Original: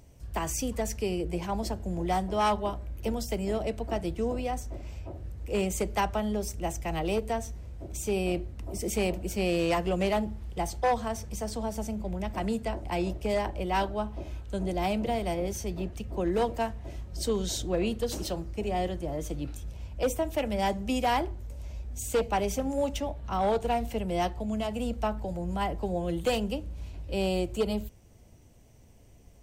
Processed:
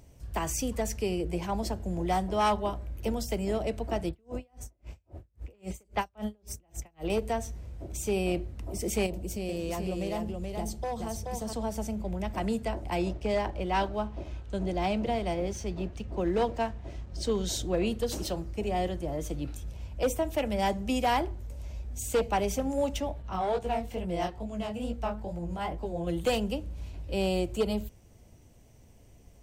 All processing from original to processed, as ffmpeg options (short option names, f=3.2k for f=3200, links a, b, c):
-filter_complex "[0:a]asettb=1/sr,asplit=3[a][b][c];[a]atrim=end=4.094[d];[b]atrim=start=4.09:end=7.1,asetpts=PTS-STARTPTS,afade=t=in:d=0.004:c=qsin,afade=t=out:st=3.006:d=0.004:c=qsin,acrossover=split=4500[e][f];[f]adelay=40[g];[e][g]amix=inputs=2:normalize=0,atrim=end_sample=132741,aeval=exprs='val(0)*pow(10,-39*(0.5-0.5*cos(2*PI*3.7*n/s))/20)':c=same[h];[c]atrim=start=7.096[i];[d][h]acrossfade=d=0.004:c1=hsin:c2=qsin[j];[j][i]acrossfade=d=0.004:c1=qsin:c2=hsin,asettb=1/sr,asplit=3[k][l][m];[k]atrim=end=9.064[n];[l]atrim=start=9.06:end=11.53,asetpts=PTS-STARTPTS,afade=t=in:d=0.004:c=qsin,afade=t=out:st=2.466:d=0.004:c=qsin,equalizer=f=1.6k:w=0.57:g=-8,acompressor=threshold=-30dB:ratio=4:attack=3.2:release=140:knee=1:detection=peak,aecho=1:1:429:0.631,atrim=end_sample=108927[o];[m]atrim=start=11.526[p];[n][o]acrossfade=d=0.004:c1=hsin:c2=qsin[q];[q][p]acrossfade=d=0.004:c1=qsin:c2=hsin,asettb=1/sr,asplit=3[r][s][t];[r]atrim=end=13.094[u];[s]atrim=start=13.09:end=17.46,asetpts=PTS-STARTPTS,afade=t=in:d=0.004:c=qsin,afade=t=out:st=4.366:d=0.004:c=qsin,lowpass=6.6k,aeval=exprs='sgn(val(0))*max(abs(val(0))-0.0015,0)':c=same[v];[t]atrim=start=17.456[w];[u][v]acrossfade=d=0.004:c1=hsin:c2=qsin[x];[x][w]acrossfade=d=0.004:c1=qsin:c2=hsin,asettb=1/sr,asplit=3[y][z][aa];[y]atrim=end=23.224[ab];[z]atrim=start=23.22:end=26.07,asetpts=PTS-STARTPTS,afade=t=in:d=0.004:c=qsin,afade=t=out:st=2.846:d=0.004:c=qsin,highpass=40,highshelf=f=7.7k:g=-4.5,flanger=delay=16.5:depth=7.1:speed=2.3[ac];[aa]atrim=start=26.066[ad];[ab][ac]acrossfade=d=0.004:c1=hsin:c2=qsin[ae];[ae][ad]acrossfade=d=0.004:c1=qsin:c2=hsin"